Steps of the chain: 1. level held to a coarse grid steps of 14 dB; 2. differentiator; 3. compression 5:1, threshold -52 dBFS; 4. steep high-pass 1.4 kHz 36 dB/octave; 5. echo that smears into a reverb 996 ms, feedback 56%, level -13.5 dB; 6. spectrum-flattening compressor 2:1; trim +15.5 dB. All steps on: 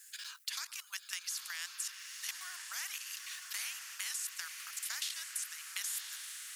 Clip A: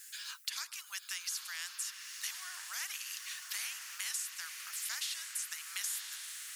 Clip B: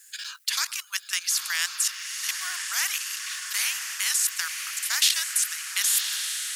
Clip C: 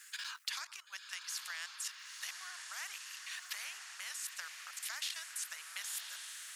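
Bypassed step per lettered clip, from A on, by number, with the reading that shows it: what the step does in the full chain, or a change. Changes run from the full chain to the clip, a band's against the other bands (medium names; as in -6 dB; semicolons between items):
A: 1, crest factor change +2.0 dB; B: 3, mean gain reduction 6.0 dB; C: 2, 8 kHz band -3.5 dB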